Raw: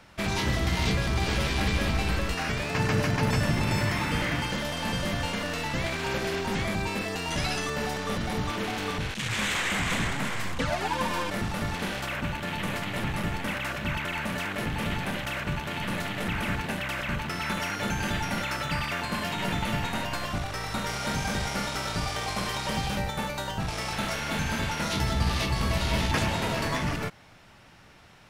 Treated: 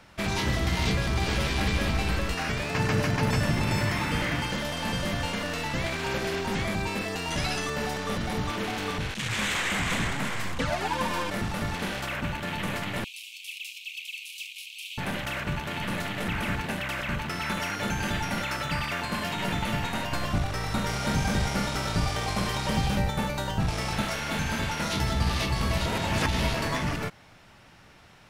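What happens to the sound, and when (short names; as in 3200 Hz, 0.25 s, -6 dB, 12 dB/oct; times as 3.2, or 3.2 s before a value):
13.04–14.98 steep high-pass 2400 Hz 96 dB/oct
20.12–24.02 low shelf 360 Hz +6 dB
25.86–26.54 reverse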